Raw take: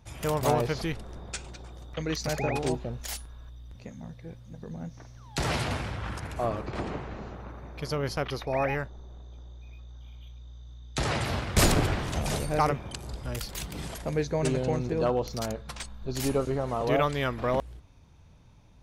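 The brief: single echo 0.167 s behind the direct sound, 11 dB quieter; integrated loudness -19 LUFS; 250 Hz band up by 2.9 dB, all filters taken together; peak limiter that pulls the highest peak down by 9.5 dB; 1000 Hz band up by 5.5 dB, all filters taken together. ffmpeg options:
-af "equalizer=f=250:t=o:g=3.5,equalizer=f=1k:t=o:g=7,alimiter=limit=-17dB:level=0:latency=1,aecho=1:1:167:0.282,volume=10.5dB"

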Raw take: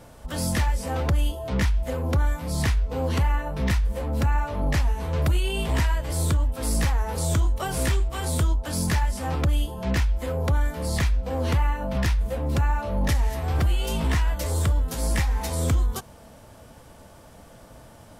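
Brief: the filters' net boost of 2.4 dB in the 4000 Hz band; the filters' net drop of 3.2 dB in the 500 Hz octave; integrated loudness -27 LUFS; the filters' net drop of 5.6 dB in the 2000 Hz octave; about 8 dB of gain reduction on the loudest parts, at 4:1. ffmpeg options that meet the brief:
-af "equalizer=f=500:t=o:g=-3.5,equalizer=f=2k:t=o:g=-8.5,equalizer=f=4k:t=o:g=6,acompressor=threshold=-28dB:ratio=4,volume=5dB"

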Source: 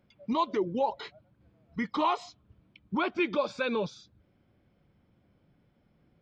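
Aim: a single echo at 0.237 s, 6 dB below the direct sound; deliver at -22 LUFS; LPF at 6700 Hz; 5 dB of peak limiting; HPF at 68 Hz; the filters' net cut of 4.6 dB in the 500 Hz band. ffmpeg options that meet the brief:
-af "highpass=68,lowpass=6.7k,equalizer=f=500:t=o:g=-6,alimiter=limit=-23dB:level=0:latency=1,aecho=1:1:237:0.501,volume=12.5dB"

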